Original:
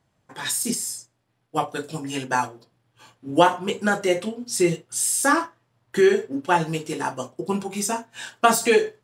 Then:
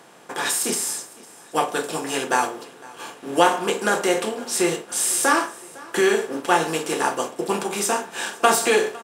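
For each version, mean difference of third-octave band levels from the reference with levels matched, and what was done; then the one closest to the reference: 8.5 dB: per-bin compression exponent 0.6; HPF 150 Hz 12 dB/oct; low shelf 260 Hz -8.5 dB; on a send: feedback echo 0.506 s, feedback 50%, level -22 dB; on the sum: gain -1 dB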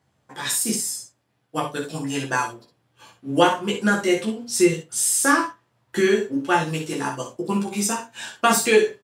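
3.0 dB: HPF 59 Hz; notches 50/100/150 Hz; on a send: early reflections 14 ms -3 dB, 59 ms -8.5 dB, 69 ms -10.5 dB; on the sum: dynamic EQ 730 Hz, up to -6 dB, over -35 dBFS, Q 1.9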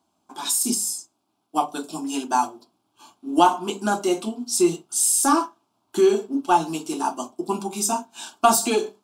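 4.5 dB: HPF 140 Hz 12 dB/oct; notches 50/100/150/200 Hz; in parallel at -9 dB: soft clip -17 dBFS, distortion -9 dB; on the sum: fixed phaser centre 500 Hz, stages 6; gain +1.5 dB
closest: second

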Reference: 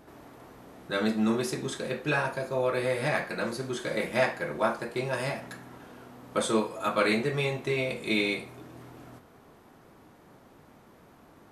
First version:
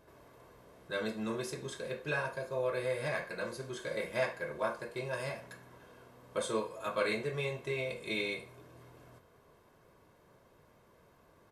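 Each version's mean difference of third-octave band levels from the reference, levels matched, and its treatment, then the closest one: 1.5 dB: comb 1.9 ms, depth 50%; gain -8.5 dB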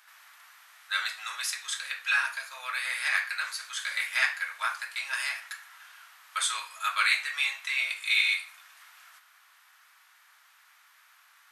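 16.0 dB: inverse Chebyshev high-pass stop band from 310 Hz, stop band 70 dB; gain +6 dB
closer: first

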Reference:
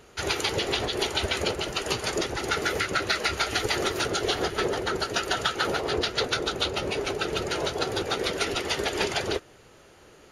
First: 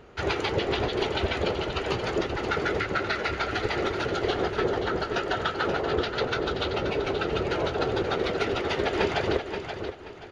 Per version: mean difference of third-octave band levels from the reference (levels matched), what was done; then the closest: 6.0 dB: high shelf 7300 Hz -9 dB; on a send: feedback echo 0.529 s, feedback 26%, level -9 dB; on the sum: vocal rider within 4 dB 2 s; tape spacing loss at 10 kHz 20 dB; gain +2.5 dB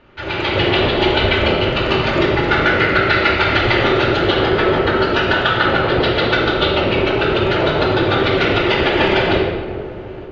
8.5 dB: LPF 3300 Hz 24 dB/oct; shoebox room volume 1500 m³, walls mixed, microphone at 2.5 m; AGC gain up to 9 dB; dark delay 0.435 s, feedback 59%, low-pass 720 Hz, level -14 dB; gain +1 dB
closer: first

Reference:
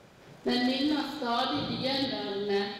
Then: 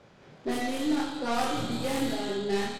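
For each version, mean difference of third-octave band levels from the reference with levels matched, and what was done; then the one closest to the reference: 4.5 dB: tracing distortion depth 0.39 ms; vocal rider; air absorption 62 m; doubler 26 ms -4 dB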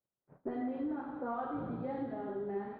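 10.0 dB: LPF 1400 Hz 24 dB/oct; gate -49 dBFS, range -38 dB; compressor, threshold -29 dBFS, peak gain reduction 5.5 dB; flange 0.97 Hz, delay 8 ms, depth 6.5 ms, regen -78%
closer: first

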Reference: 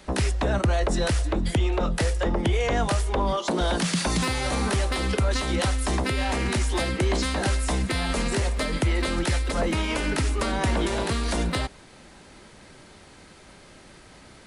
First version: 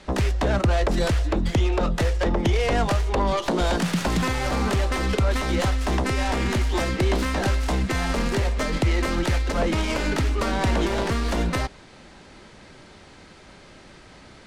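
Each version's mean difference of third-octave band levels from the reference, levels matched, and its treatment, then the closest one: 2.5 dB: tracing distortion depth 0.47 ms; LPF 6900 Hz 12 dB/oct; gain +2 dB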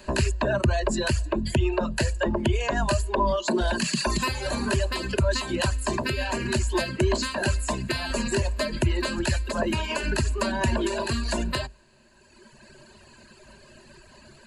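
5.0 dB: reverb removal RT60 2 s; ripple EQ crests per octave 1.4, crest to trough 12 dB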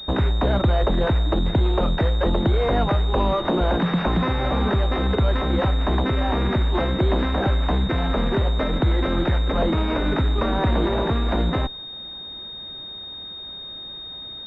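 8.0 dB: in parallel at -6 dB: Schmitt trigger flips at -30 dBFS; on the sum: pulse-width modulation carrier 3700 Hz; gain +1.5 dB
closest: first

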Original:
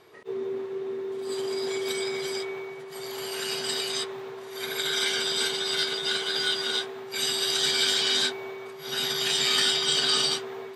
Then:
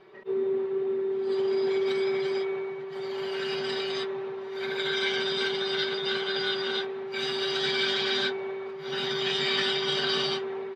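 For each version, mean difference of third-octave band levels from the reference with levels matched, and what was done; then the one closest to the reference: 5.0 dB: air absorption 250 m; comb 5.2 ms, depth 77%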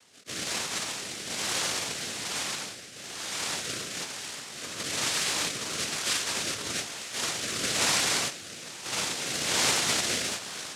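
8.5 dB: noise vocoder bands 1; rotary speaker horn 1.1 Hz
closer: first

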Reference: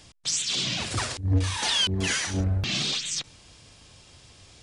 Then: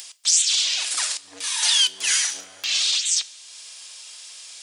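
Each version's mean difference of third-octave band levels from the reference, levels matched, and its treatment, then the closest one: 11.0 dB: Bessel high-pass 650 Hz, order 2; tilt +4.5 dB/oct; upward compressor, threshold -31 dBFS; two-slope reverb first 0.22 s, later 2.9 s, from -21 dB, DRR 11.5 dB; gain -2.5 dB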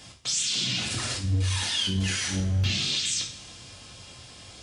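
4.5 dB: limiter -25 dBFS, peak gain reduction 11 dB; HPF 50 Hz; dynamic EQ 820 Hz, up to -8 dB, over -54 dBFS, Q 0.82; two-slope reverb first 0.44 s, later 2.6 s, from -22 dB, DRR -1.5 dB; gain +2.5 dB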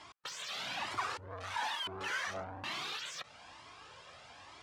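8.0 dB: in parallel at 0 dB: compressor, threshold -38 dBFS, peak gain reduction 18.5 dB; on the sum: overloaded stage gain 30.5 dB; band-pass 1100 Hz, Q 1.3; cascading flanger rising 1.1 Hz; gain +7 dB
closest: second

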